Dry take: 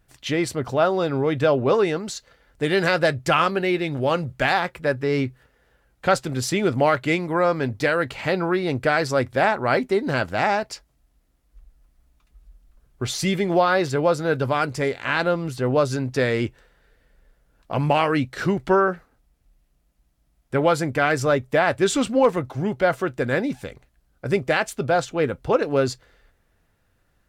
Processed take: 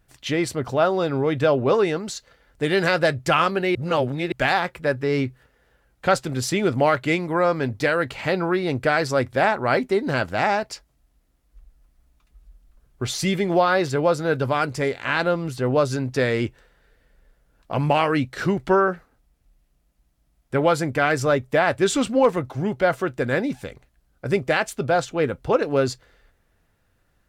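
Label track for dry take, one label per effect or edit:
3.750000	4.320000	reverse

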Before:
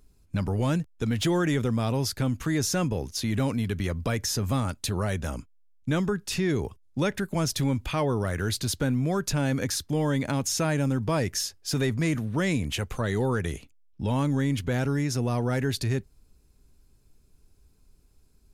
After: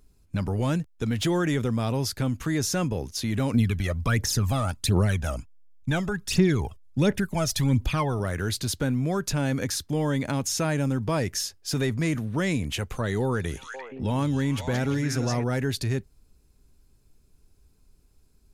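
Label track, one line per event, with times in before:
3.540000	8.200000	phase shifter 1.4 Hz, delay 1.7 ms, feedback 62%
13.220000	15.440000	echo through a band-pass that steps 173 ms, band-pass from 5,000 Hz, each repeat −1.4 octaves, level 0 dB

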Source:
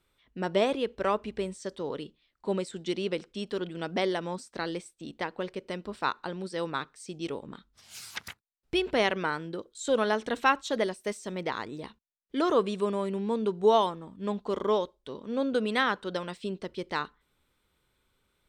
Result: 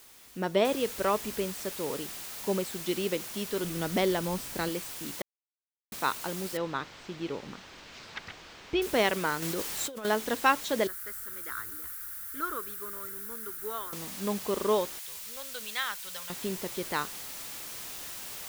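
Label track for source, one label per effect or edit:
0.650000	0.650000	noise floor change −54 dB −41 dB
3.640000	4.690000	low-shelf EQ 160 Hz +11 dB
5.220000	5.920000	silence
6.570000	8.820000	high-frequency loss of the air 180 metres
9.420000	10.050000	compressor whose output falls as the input rises −35 dBFS
10.870000	13.930000	drawn EQ curve 100 Hz 0 dB, 160 Hz −27 dB, 300 Hz −13 dB, 630 Hz −21 dB, 910 Hz −20 dB, 1,400 Hz +4 dB, 2,600 Hz −16 dB, 6,200 Hz −11 dB, 12,000 Hz +3 dB
14.990000	16.300000	guitar amp tone stack bass-middle-treble 10-0-10

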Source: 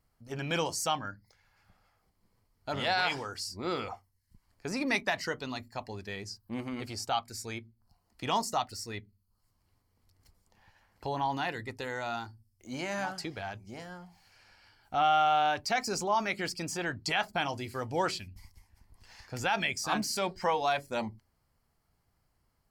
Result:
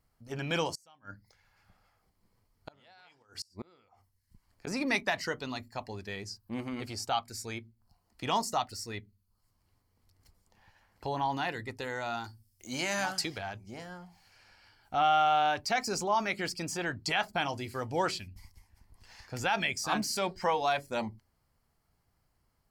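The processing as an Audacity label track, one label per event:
0.750000	4.670000	gate with flip shuts at −28 dBFS, range −30 dB
12.240000	13.380000	high-shelf EQ 2,300 Hz +10.5 dB

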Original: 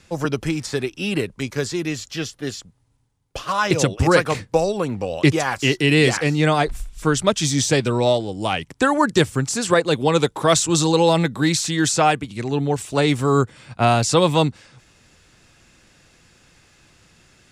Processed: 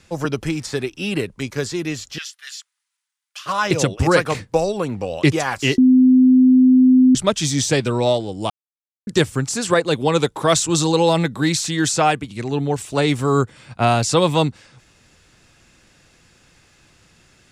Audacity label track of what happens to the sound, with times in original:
2.180000	3.460000	high-pass filter 1,400 Hz 24 dB per octave
5.780000	7.150000	beep over 256 Hz −8 dBFS
8.500000	9.070000	silence

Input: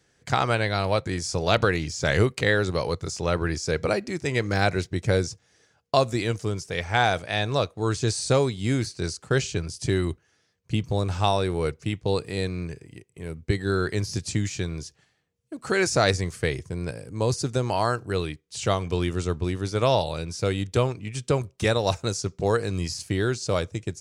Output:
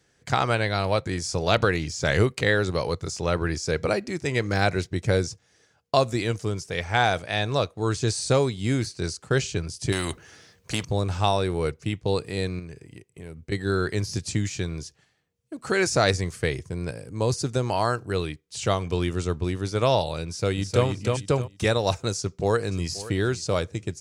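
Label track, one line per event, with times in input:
9.920000	10.850000	every bin compressed towards the loudest bin 2 to 1
12.590000	13.520000	downward compressor 2.5 to 1, threshold −37 dBFS
20.250000	20.850000	delay throw 310 ms, feedback 25%, level −3.5 dB
22.180000	22.910000	delay throw 530 ms, feedback 30%, level −16.5 dB

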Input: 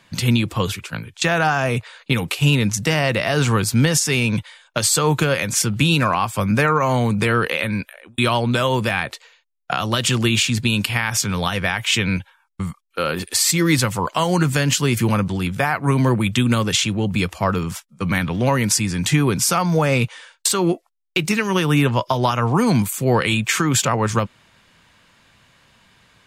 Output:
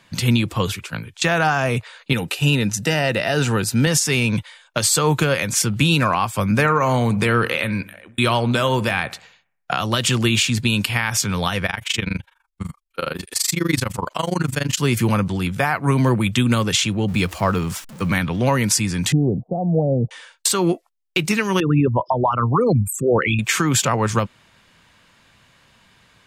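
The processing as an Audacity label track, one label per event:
2.130000	3.870000	notch comb filter 1,100 Hz
6.520000	9.710000	bucket-brigade delay 60 ms, stages 1,024, feedback 50%, level −18 dB
11.660000	14.780000	amplitude modulation modulator 24 Hz, depth 90%
17.080000	18.140000	converter with a step at zero of −34.5 dBFS
19.120000	20.110000	Chebyshev low-pass filter 750 Hz, order 6
21.600000	23.390000	spectral envelope exaggerated exponent 3

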